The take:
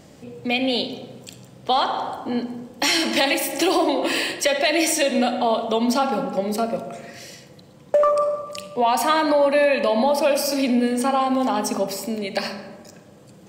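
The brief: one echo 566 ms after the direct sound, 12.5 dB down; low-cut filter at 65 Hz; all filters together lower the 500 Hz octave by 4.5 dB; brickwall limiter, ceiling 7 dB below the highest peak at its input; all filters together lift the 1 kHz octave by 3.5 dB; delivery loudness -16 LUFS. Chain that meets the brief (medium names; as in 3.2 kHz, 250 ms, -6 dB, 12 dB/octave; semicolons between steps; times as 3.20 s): high-pass 65 Hz; peaking EQ 500 Hz -8.5 dB; peaking EQ 1 kHz +7.5 dB; peak limiter -12.5 dBFS; delay 566 ms -12.5 dB; trim +6.5 dB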